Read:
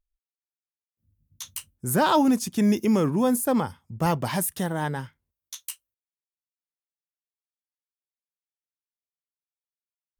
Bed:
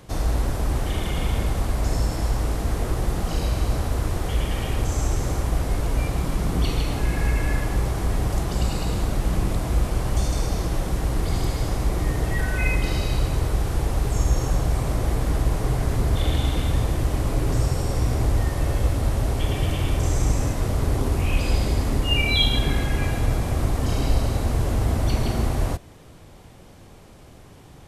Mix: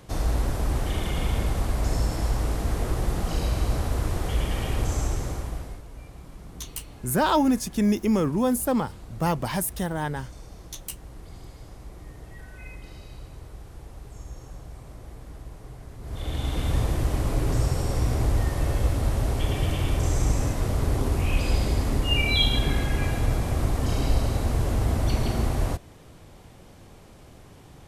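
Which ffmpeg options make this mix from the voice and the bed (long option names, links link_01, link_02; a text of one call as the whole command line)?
ffmpeg -i stem1.wav -i stem2.wav -filter_complex "[0:a]adelay=5200,volume=-1dB[link_01];[1:a]volume=15.5dB,afade=type=out:start_time=4.91:duration=0.92:silence=0.133352,afade=type=in:start_time=16:duration=0.77:silence=0.133352[link_02];[link_01][link_02]amix=inputs=2:normalize=0" out.wav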